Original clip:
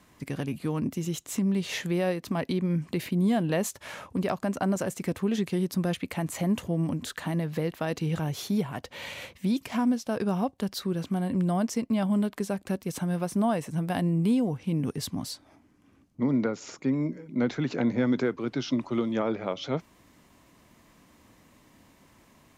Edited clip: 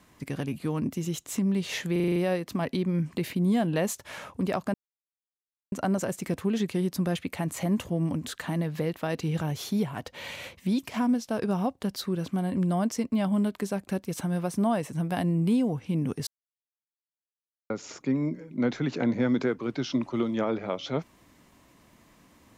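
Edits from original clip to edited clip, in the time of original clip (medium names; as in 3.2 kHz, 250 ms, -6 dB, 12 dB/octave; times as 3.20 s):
1.92 s: stutter 0.04 s, 7 plays
4.50 s: insert silence 0.98 s
15.05–16.48 s: mute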